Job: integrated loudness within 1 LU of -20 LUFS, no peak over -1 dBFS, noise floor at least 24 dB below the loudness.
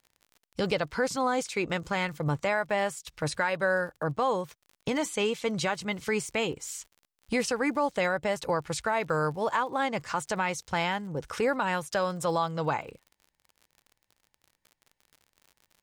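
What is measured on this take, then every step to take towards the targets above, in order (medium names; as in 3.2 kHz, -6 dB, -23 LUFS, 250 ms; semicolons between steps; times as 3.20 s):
tick rate 52 per s; loudness -29.5 LUFS; peak level -14.5 dBFS; loudness target -20.0 LUFS
-> de-click; trim +9.5 dB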